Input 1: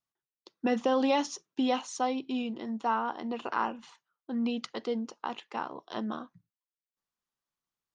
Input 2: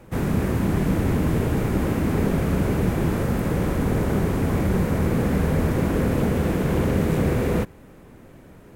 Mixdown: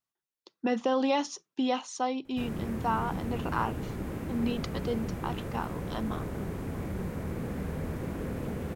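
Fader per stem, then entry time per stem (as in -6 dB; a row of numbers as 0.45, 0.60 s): -0.5, -13.5 dB; 0.00, 2.25 s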